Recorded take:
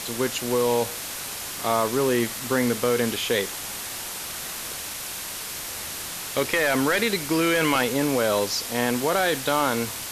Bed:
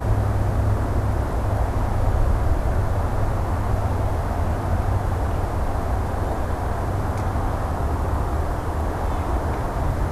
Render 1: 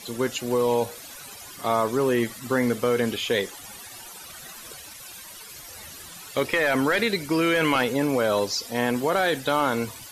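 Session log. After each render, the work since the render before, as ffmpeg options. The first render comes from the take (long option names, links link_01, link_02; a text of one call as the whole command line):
ffmpeg -i in.wav -af "afftdn=noise_reduction=15:noise_floor=-34" out.wav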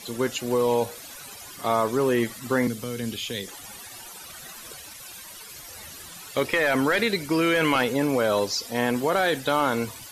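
ffmpeg -i in.wav -filter_complex "[0:a]asettb=1/sr,asplit=3[link_01][link_02][link_03];[link_01]atrim=end=2.674[link_04];[link_02]atrim=start=2.67:end=3.48,asetpts=PTS-STARTPTS,afade=type=in:duration=0.004:curve=qsin,afade=type=out:start_time=0.806:duration=0.004:curve=qsin,acrossover=split=250|3000[link_05][link_06][link_07];[link_06]acompressor=threshold=-47dB:ratio=2:attack=3.2:release=140:knee=2.83:detection=peak[link_08];[link_05][link_08][link_07]amix=inputs=3:normalize=0[link_09];[link_03]atrim=start=3.476[link_10];[link_04][link_09]acrossfade=duration=0.004:curve1=hsin:curve2=qsin[link_11];[link_11][link_10]acrossfade=duration=0.004:curve1=qsin:curve2=hsin" out.wav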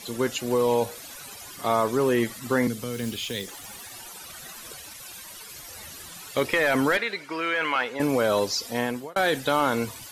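ffmpeg -i in.wav -filter_complex "[0:a]asettb=1/sr,asplit=3[link_01][link_02][link_03];[link_01]atrim=end=2.934[link_04];[link_02]atrim=start=2.93:end=3.92,asetpts=PTS-STARTPTS,afade=type=in:duration=0.004:curve=qsin,afade=type=out:start_time=0.986:duration=0.004:curve=qsin,acrusher=bits=4:mode=log:mix=0:aa=0.000001[link_05];[link_03]atrim=start=3.916[link_06];[link_04][link_05]acrossfade=duration=0.004:curve1=hsin:curve2=qsin[link_07];[link_07][link_06]acrossfade=duration=0.004:curve1=qsin:curve2=hsin,asettb=1/sr,asplit=3[link_08][link_09][link_10];[link_08]atrim=end=6.974[link_11];[link_09]atrim=start=6.97:end=8,asetpts=PTS-STARTPTS,afade=type=in:duration=0.004:curve=qsin,afade=type=out:start_time=1.026:duration=0.004:curve=qsin,bandpass=frequency=1500:width_type=q:width=0.79[link_12];[link_10]atrim=start=7.996[link_13];[link_11][link_12]acrossfade=duration=0.004:curve1=hsin:curve2=qsin[link_14];[link_14][link_13]acrossfade=duration=0.004:curve1=qsin:curve2=hsin,asplit=2[link_15][link_16];[link_15]atrim=end=9.16,asetpts=PTS-STARTPTS,afade=type=out:start_time=8.72:duration=0.44[link_17];[link_16]atrim=start=9.16,asetpts=PTS-STARTPTS,afade=type=in:duration=0.004:curve=hsin[link_18];[link_17][link_18]concat=n=2:v=0:a=1" out.wav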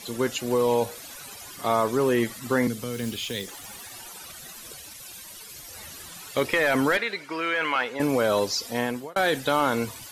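ffmpeg -i in.wav -filter_complex "[0:a]asettb=1/sr,asplit=3[link_01][link_02][link_03];[link_01]atrim=end=4.324[link_04];[link_02]atrim=start=4.32:end=5.74,asetpts=PTS-STARTPTS,afade=type=in:duration=0.004:curve=qsin,afade=type=out:start_time=1.416:duration=0.004:curve=qsin,equalizer=frequency=1200:width=0.64:gain=-4[link_05];[link_03]atrim=start=5.736[link_06];[link_04][link_05]acrossfade=duration=0.004:curve1=hsin:curve2=qsin[link_07];[link_07][link_06]acrossfade=duration=0.004:curve1=qsin:curve2=hsin" out.wav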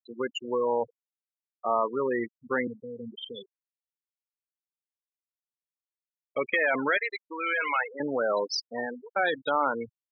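ffmpeg -i in.wav -af "afftfilt=real='re*gte(hypot(re,im),0.112)':imag='im*gte(hypot(re,im),0.112)':win_size=1024:overlap=0.75,highpass=frequency=620:poles=1" out.wav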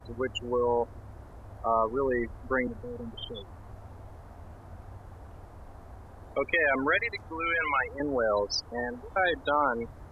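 ffmpeg -i in.wav -i bed.wav -filter_complex "[1:a]volume=-24dB[link_01];[0:a][link_01]amix=inputs=2:normalize=0" out.wav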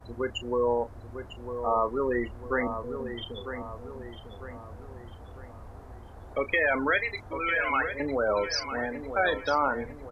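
ffmpeg -i in.wav -filter_complex "[0:a]asplit=2[link_01][link_02];[link_02]adelay=33,volume=-13dB[link_03];[link_01][link_03]amix=inputs=2:normalize=0,asplit=2[link_04][link_05];[link_05]adelay=950,lowpass=frequency=3200:poles=1,volume=-9dB,asplit=2[link_06][link_07];[link_07]adelay=950,lowpass=frequency=3200:poles=1,volume=0.46,asplit=2[link_08][link_09];[link_09]adelay=950,lowpass=frequency=3200:poles=1,volume=0.46,asplit=2[link_10][link_11];[link_11]adelay=950,lowpass=frequency=3200:poles=1,volume=0.46,asplit=2[link_12][link_13];[link_13]adelay=950,lowpass=frequency=3200:poles=1,volume=0.46[link_14];[link_04][link_06][link_08][link_10][link_12][link_14]amix=inputs=6:normalize=0" out.wav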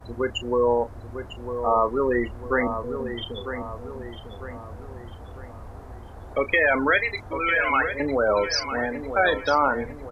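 ffmpeg -i in.wav -af "volume=5dB" out.wav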